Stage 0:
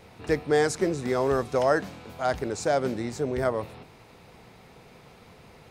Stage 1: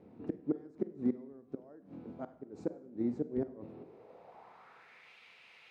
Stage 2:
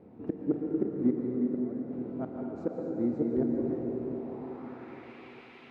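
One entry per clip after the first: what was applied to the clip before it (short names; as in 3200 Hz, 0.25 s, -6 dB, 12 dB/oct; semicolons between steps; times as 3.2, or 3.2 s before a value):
flipped gate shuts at -17 dBFS, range -25 dB; Schroeder reverb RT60 0.65 s, combs from 33 ms, DRR 12.5 dB; band-pass sweep 270 Hz -> 2600 Hz, 3.67–5.15; gain +3 dB
reverse delay 0.21 s, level -9 dB; LPF 2000 Hz 6 dB/oct; plate-style reverb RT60 4.7 s, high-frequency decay 0.85×, pre-delay 0.105 s, DRR -0.5 dB; gain +4 dB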